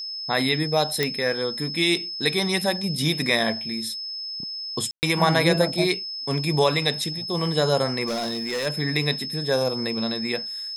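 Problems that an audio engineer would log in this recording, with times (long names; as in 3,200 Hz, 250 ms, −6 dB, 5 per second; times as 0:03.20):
whistle 5,200 Hz −30 dBFS
0:01.03: click −7 dBFS
0:04.91–0:05.03: drop-out 119 ms
0:08.06–0:08.67: clipping −23.5 dBFS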